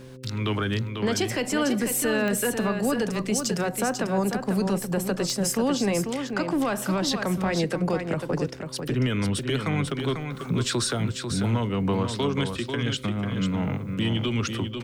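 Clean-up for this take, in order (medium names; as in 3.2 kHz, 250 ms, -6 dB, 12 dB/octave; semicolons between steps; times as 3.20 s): de-click; de-hum 129.3 Hz, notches 4; inverse comb 494 ms -6.5 dB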